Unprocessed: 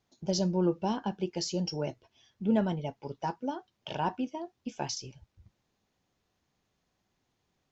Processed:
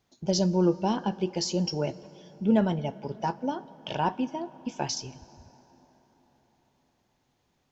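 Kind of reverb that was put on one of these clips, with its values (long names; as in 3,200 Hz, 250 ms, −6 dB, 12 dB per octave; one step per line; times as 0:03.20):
dense smooth reverb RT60 4.8 s, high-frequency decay 0.5×, DRR 17.5 dB
level +4 dB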